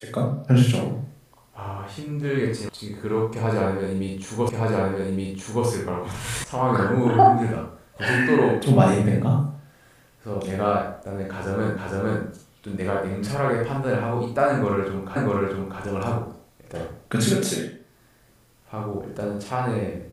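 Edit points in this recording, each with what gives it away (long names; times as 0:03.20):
0:02.69: cut off before it has died away
0:04.49: the same again, the last 1.17 s
0:06.44: cut off before it has died away
0:11.77: the same again, the last 0.46 s
0:15.16: the same again, the last 0.64 s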